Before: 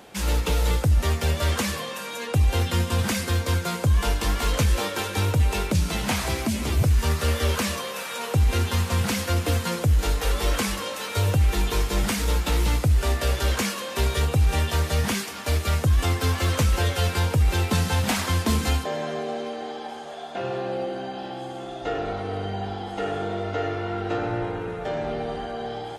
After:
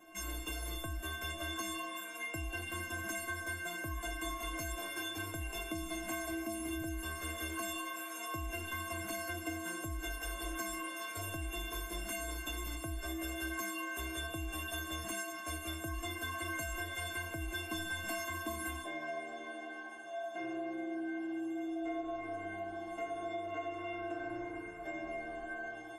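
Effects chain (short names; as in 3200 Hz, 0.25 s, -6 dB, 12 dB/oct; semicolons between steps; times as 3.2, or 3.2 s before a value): bell 4400 Hz -13.5 dB 0.61 oct; metallic resonator 320 Hz, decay 0.77 s, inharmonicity 0.03; compressor 3:1, threshold -50 dBFS, peak gain reduction 7.5 dB; gain +13 dB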